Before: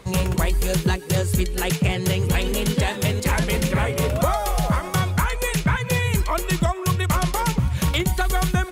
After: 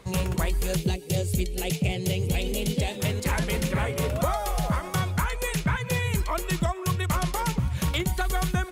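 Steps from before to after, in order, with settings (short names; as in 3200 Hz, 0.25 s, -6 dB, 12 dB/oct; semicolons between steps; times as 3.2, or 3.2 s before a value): 0.76–3 band shelf 1300 Hz -12 dB 1.2 oct; gain -5 dB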